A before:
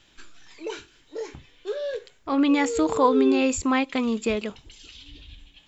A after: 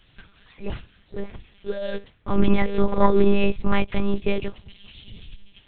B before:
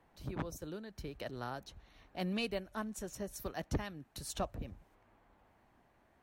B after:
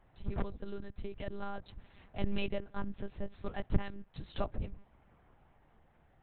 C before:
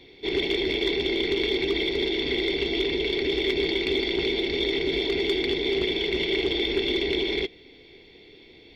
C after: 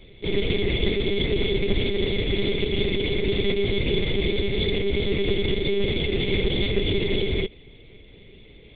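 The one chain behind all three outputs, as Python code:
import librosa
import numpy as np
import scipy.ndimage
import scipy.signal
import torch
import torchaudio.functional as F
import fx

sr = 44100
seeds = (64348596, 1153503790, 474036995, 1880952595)

y = fx.cheby_harmonics(x, sr, harmonics=(2,), levels_db=(-13,), full_scale_db=-7.5)
y = fx.lpc_monotone(y, sr, seeds[0], pitch_hz=200.0, order=8)
y = fx.low_shelf(y, sr, hz=180.0, db=7.5)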